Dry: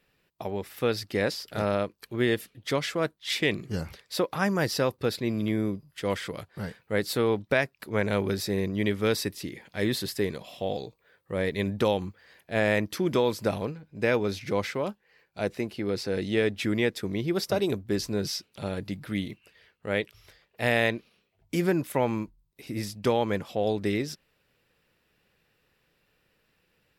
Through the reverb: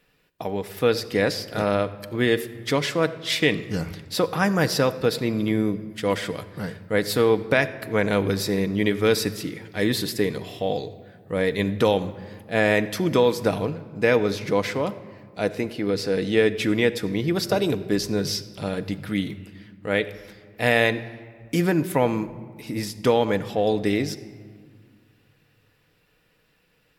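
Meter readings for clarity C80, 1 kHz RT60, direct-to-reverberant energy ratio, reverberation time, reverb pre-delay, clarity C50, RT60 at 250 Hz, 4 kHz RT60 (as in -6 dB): 16.0 dB, 1.8 s, 9.0 dB, 1.8 s, 4 ms, 15.0 dB, 2.5 s, 1.0 s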